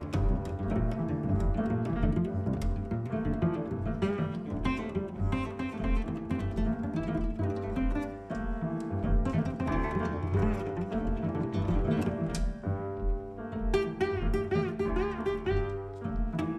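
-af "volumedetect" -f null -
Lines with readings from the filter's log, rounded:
mean_volume: -30.2 dB
max_volume: -15.3 dB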